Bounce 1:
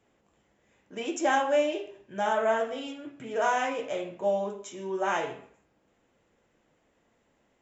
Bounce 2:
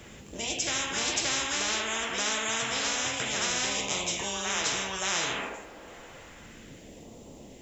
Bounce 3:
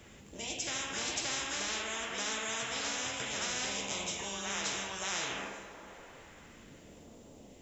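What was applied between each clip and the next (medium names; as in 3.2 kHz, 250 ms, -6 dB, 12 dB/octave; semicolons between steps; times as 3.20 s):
phase shifter stages 2, 0.31 Hz, lowest notch 110–1600 Hz; reverse echo 576 ms -6.5 dB; spectrum-flattening compressor 10:1
plate-style reverb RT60 3.8 s, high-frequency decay 0.5×, DRR 8 dB; trim -7 dB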